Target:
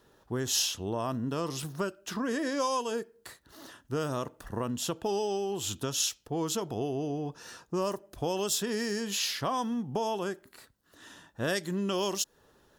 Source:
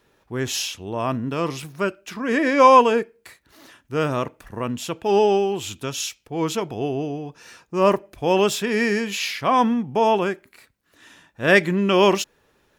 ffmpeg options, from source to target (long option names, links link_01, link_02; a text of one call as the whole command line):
ffmpeg -i in.wav -filter_complex "[0:a]acrossover=split=4200[link_01][link_02];[link_01]acompressor=threshold=-29dB:ratio=6[link_03];[link_03][link_02]amix=inputs=2:normalize=0,equalizer=frequency=2300:width=3.5:gain=-12.5" out.wav